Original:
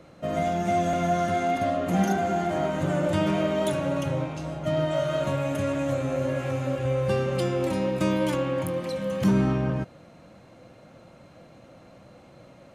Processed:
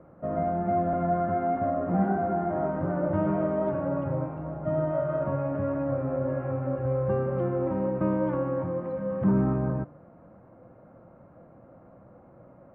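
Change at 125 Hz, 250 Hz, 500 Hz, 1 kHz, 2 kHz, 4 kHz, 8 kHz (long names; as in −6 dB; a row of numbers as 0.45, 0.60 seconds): −1.5 dB, −1.5 dB, −1.5 dB, −1.5 dB, −9.5 dB, below −25 dB, below −35 dB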